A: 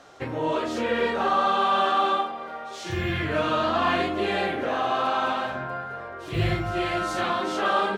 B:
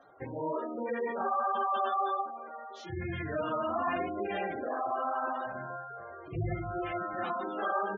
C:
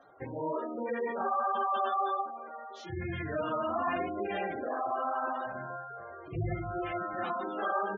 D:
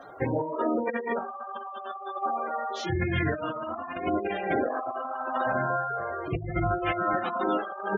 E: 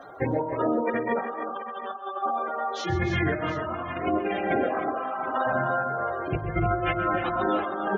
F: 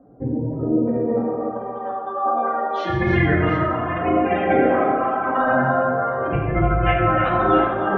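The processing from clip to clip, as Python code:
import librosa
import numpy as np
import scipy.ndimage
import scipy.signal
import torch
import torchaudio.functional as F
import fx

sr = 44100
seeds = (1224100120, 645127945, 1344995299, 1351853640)

y1 = fx.spec_gate(x, sr, threshold_db=-15, keep='strong')
y1 = fx.peak_eq(y1, sr, hz=730.0, db=2.0, octaves=0.77)
y1 = F.gain(torch.from_numpy(y1), -8.5).numpy()
y2 = y1
y3 = fx.over_compress(y2, sr, threshold_db=-37.0, ratio=-0.5)
y3 = F.gain(torch.from_numpy(y3), 8.5).numpy()
y4 = fx.echo_multitap(y3, sr, ms=(131, 279, 307, 724), db=(-13.5, -18.0, -9.0, -15.0))
y4 = F.gain(torch.from_numpy(y4), 1.5).numpy()
y5 = fx.filter_sweep_lowpass(y4, sr, from_hz=250.0, to_hz=2500.0, start_s=0.39, end_s=2.88, q=0.89)
y5 = fx.room_shoebox(y5, sr, seeds[0], volume_m3=1000.0, walls='mixed', distance_m=2.0)
y5 = F.gain(torch.from_numpy(y5), 3.0).numpy()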